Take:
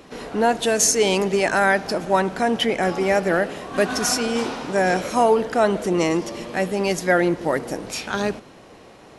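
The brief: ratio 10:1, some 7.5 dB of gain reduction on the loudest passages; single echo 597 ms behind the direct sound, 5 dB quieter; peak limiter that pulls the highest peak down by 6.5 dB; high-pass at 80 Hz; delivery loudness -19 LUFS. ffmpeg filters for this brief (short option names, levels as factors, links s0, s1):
-af "highpass=80,acompressor=threshold=0.1:ratio=10,alimiter=limit=0.133:level=0:latency=1,aecho=1:1:597:0.562,volume=2.37"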